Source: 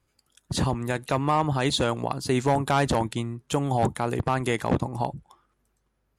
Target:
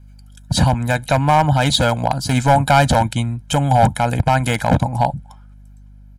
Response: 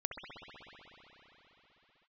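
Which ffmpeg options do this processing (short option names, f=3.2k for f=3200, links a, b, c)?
-af "aeval=exprs='val(0)+0.00224*(sin(2*PI*50*n/s)+sin(2*PI*2*50*n/s)/2+sin(2*PI*3*50*n/s)/3+sin(2*PI*4*50*n/s)/4+sin(2*PI*5*50*n/s)/5)':c=same,aeval=exprs='0.178*(abs(mod(val(0)/0.178+3,4)-2)-1)':c=same,aecho=1:1:1.3:0.92,volume=7dB"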